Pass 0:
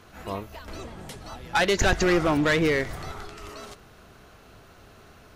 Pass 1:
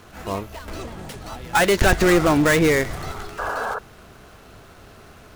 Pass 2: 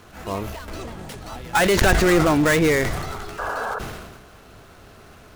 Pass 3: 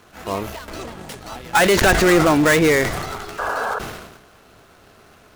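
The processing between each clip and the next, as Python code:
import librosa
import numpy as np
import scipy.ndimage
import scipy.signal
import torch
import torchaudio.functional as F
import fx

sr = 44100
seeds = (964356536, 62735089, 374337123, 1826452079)

y1 = fx.dead_time(x, sr, dead_ms=0.089)
y1 = fx.spec_paint(y1, sr, seeds[0], shape='noise', start_s=3.38, length_s=0.41, low_hz=420.0, high_hz=1700.0, level_db=-32.0)
y1 = y1 * librosa.db_to_amplitude(5.5)
y2 = fx.sustainer(y1, sr, db_per_s=39.0)
y2 = y2 * librosa.db_to_amplitude(-1.0)
y3 = fx.low_shelf(y2, sr, hz=130.0, db=-8.0)
y3 = fx.leveller(y3, sr, passes=1)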